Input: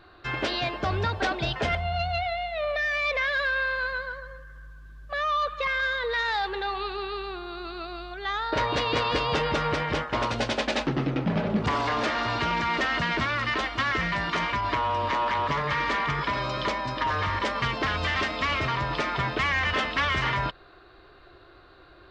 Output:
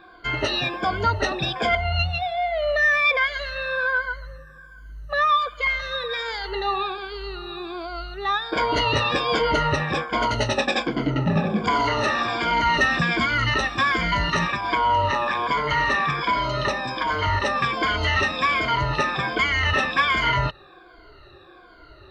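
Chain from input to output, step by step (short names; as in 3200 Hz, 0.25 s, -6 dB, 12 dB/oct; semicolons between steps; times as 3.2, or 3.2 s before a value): moving spectral ripple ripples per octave 1.8, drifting -1.3 Hz, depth 20 dB; 12.66–14.48 tone controls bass +5 dB, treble +3 dB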